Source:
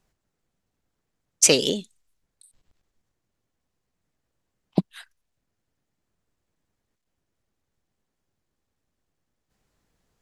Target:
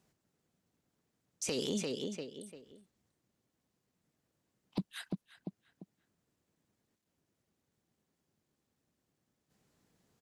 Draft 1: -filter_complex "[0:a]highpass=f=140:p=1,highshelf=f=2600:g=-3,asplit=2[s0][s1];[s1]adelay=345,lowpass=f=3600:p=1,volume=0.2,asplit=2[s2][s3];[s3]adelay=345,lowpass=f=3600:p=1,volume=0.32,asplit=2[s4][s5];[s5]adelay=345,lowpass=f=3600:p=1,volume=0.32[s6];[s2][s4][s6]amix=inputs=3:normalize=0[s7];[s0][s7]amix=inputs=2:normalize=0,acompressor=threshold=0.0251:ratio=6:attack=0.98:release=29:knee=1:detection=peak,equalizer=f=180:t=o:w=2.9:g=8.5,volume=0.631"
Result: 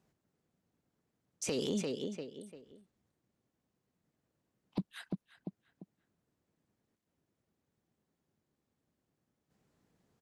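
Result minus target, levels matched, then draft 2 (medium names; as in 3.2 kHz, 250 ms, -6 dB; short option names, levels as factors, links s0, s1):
4 kHz band -3.0 dB
-filter_complex "[0:a]highpass=f=140:p=1,highshelf=f=2600:g=4,asplit=2[s0][s1];[s1]adelay=345,lowpass=f=3600:p=1,volume=0.2,asplit=2[s2][s3];[s3]adelay=345,lowpass=f=3600:p=1,volume=0.32,asplit=2[s4][s5];[s5]adelay=345,lowpass=f=3600:p=1,volume=0.32[s6];[s2][s4][s6]amix=inputs=3:normalize=0[s7];[s0][s7]amix=inputs=2:normalize=0,acompressor=threshold=0.0251:ratio=6:attack=0.98:release=29:knee=1:detection=peak,equalizer=f=180:t=o:w=2.9:g=8.5,volume=0.631"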